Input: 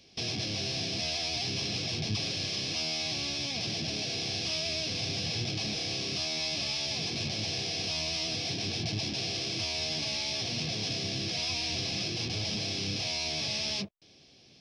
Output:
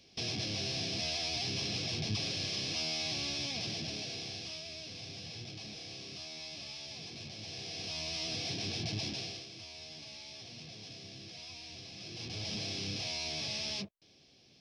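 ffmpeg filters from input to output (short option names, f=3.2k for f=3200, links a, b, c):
-af "volume=16dB,afade=t=out:st=3.39:d=1.26:silence=0.334965,afade=t=in:st=7.39:d=0.99:silence=0.375837,afade=t=out:st=9.07:d=0.4:silence=0.266073,afade=t=in:st=11.97:d=0.59:silence=0.298538"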